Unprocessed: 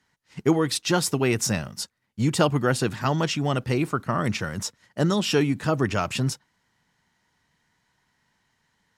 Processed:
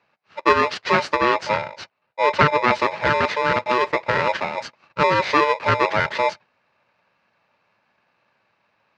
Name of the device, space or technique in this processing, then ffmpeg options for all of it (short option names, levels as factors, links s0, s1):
ring modulator pedal into a guitar cabinet: -filter_complex "[0:a]aeval=exprs='val(0)*sgn(sin(2*PI*740*n/s))':c=same,highpass=99,equalizer=f=110:t=q:w=4:g=4,equalizer=f=280:t=q:w=4:g=-6,equalizer=f=1500:t=q:w=4:g=4,equalizer=f=3400:t=q:w=4:g=-8,lowpass=f=4000:w=0.5412,lowpass=f=4000:w=1.3066,asettb=1/sr,asplit=3[s0][s1][s2];[s0]atrim=end=1.164[s3];[s1]atrim=start=1.16:end=2.73,asetpts=PTS-STARTPTS,afade=t=in:d=0.004:c=qsin,afade=t=out:st=1.566:d=0.004:c=qsin,highshelf=f=10000:g=-11.5[s4];[s2]atrim=start=2.726[s5];[s3][s4]acrossfade=d=0.004:c1=hsin:c2=qsin[s6];[s6][s5]acrossfade=d=0.004:c1=qsin:c2=hsin,volume=1.68"